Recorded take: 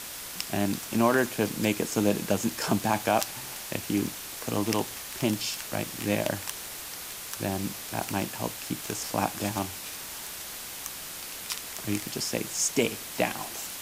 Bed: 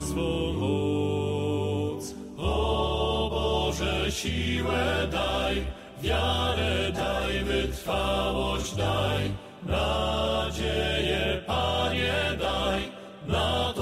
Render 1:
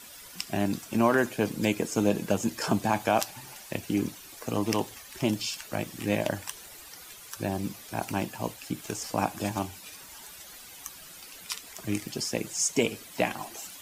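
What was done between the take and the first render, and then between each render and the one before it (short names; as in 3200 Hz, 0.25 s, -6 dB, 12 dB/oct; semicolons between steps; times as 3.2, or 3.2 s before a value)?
denoiser 12 dB, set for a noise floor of -40 dBFS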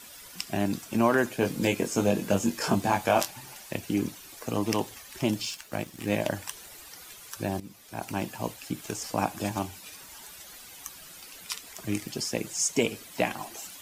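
1.4–3.28 doubler 21 ms -4 dB; 5.45–6.12 G.711 law mismatch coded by A; 7.6–8.3 fade in, from -14.5 dB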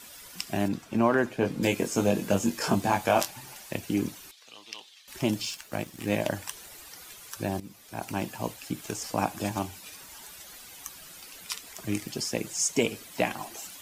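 0.68–1.63 LPF 2500 Hz 6 dB/oct; 4.31–5.08 band-pass 3600 Hz, Q 2.5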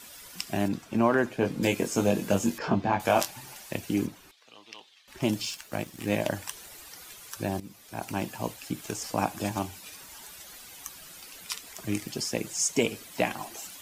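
2.58–3 air absorption 230 m; 4.05–5.21 high shelf 2900 Hz -> 4400 Hz -11 dB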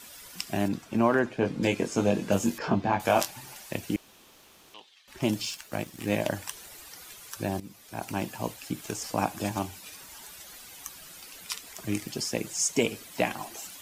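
1.19–2.32 air absorption 51 m; 3.96–4.74 room tone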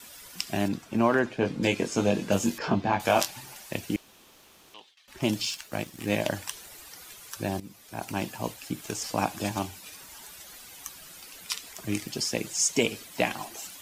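gate with hold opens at -47 dBFS; dynamic EQ 3900 Hz, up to +4 dB, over -43 dBFS, Q 0.72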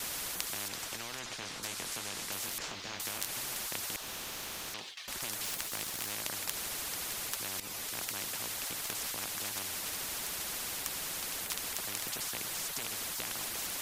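compressor 2:1, threshold -29 dBFS, peak gain reduction 7 dB; spectral compressor 10:1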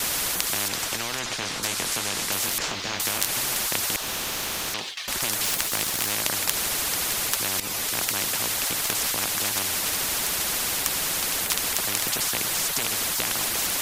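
gain +12 dB; limiter -2 dBFS, peak gain reduction 2 dB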